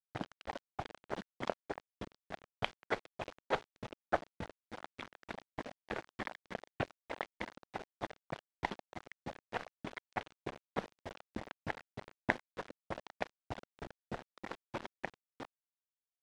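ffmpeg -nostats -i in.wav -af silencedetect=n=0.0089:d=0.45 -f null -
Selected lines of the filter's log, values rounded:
silence_start: 15.45
silence_end: 16.22 | silence_duration: 0.77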